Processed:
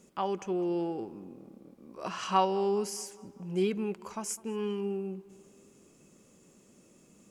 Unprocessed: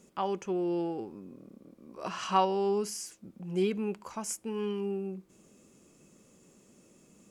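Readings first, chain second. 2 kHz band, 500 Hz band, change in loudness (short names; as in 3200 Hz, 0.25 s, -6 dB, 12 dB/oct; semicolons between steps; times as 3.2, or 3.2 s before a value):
0.0 dB, 0.0 dB, 0.0 dB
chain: tape echo 0.205 s, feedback 60%, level -20 dB, low-pass 3700 Hz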